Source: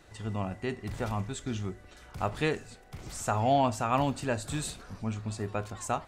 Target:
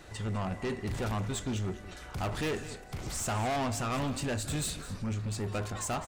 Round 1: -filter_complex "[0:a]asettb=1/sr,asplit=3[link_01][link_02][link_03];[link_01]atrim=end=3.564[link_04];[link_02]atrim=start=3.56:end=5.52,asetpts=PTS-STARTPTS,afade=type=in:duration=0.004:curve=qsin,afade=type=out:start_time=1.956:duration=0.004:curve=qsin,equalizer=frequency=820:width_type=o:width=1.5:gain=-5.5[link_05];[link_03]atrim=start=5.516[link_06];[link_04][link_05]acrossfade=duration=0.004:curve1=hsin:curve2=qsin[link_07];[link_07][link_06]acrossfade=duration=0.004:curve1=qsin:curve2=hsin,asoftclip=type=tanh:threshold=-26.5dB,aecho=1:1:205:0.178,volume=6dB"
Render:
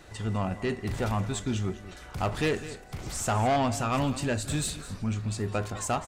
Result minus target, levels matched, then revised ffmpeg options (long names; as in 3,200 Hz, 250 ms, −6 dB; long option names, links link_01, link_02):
soft clipping: distortion −6 dB
-filter_complex "[0:a]asettb=1/sr,asplit=3[link_01][link_02][link_03];[link_01]atrim=end=3.564[link_04];[link_02]atrim=start=3.56:end=5.52,asetpts=PTS-STARTPTS,afade=type=in:duration=0.004:curve=qsin,afade=type=out:start_time=1.956:duration=0.004:curve=qsin,equalizer=frequency=820:width_type=o:width=1.5:gain=-5.5[link_05];[link_03]atrim=start=5.516[link_06];[link_04][link_05]acrossfade=duration=0.004:curve1=hsin:curve2=qsin[link_07];[link_07][link_06]acrossfade=duration=0.004:curve1=qsin:curve2=hsin,asoftclip=type=tanh:threshold=-35dB,aecho=1:1:205:0.178,volume=6dB"